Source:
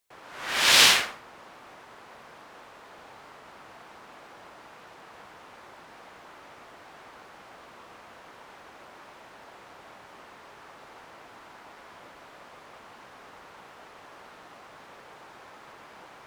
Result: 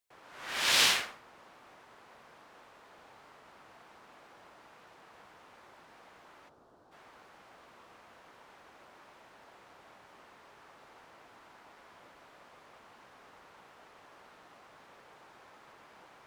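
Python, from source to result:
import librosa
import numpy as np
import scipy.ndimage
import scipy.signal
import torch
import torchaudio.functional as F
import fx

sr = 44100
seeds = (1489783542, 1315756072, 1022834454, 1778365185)

y = fx.curve_eq(x, sr, hz=(390.0, 1500.0, 2100.0, 4100.0), db=(0, -9, -22, -11), at=(6.48, 6.91), fade=0.02)
y = F.gain(torch.from_numpy(y), -8.0).numpy()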